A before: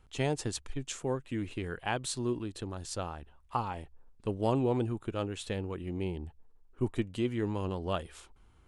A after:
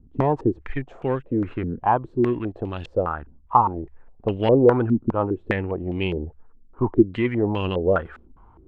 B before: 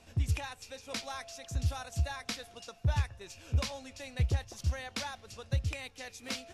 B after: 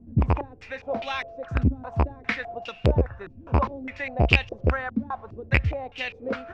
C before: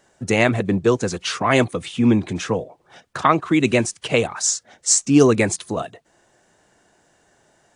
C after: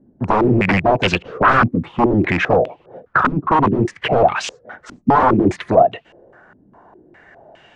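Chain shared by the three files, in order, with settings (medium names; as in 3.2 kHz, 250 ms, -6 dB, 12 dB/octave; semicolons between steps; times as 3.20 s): rattle on loud lows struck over -24 dBFS, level -9 dBFS; sine folder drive 17 dB, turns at -1 dBFS; step-sequenced low-pass 4.9 Hz 250–2800 Hz; trim -12 dB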